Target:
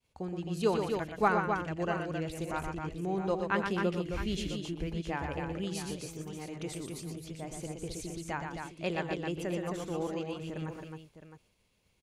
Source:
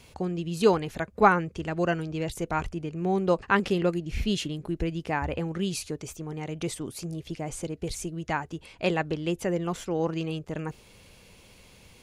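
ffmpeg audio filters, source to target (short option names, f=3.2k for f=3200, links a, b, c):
-af "agate=range=-33dB:threshold=-43dB:ratio=3:detection=peak,aecho=1:1:85|121|265|662:0.133|0.531|0.531|0.266,volume=-8dB"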